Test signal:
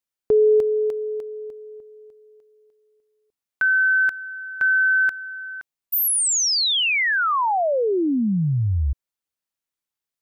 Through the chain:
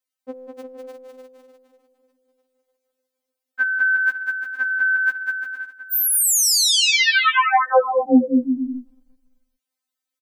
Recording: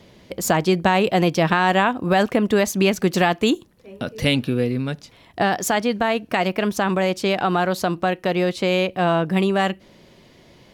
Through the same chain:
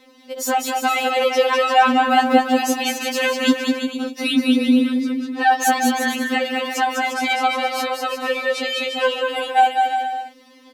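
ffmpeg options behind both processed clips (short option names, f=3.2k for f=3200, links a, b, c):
-filter_complex "[0:a]highpass=61,asplit=2[a][b];[b]aecho=0:1:200|350|462.5|546.9|610.2:0.631|0.398|0.251|0.158|0.1[c];[a][c]amix=inputs=2:normalize=0,afftfilt=real='re*3.46*eq(mod(b,12),0)':imag='im*3.46*eq(mod(b,12),0)':win_size=2048:overlap=0.75,volume=3.5dB"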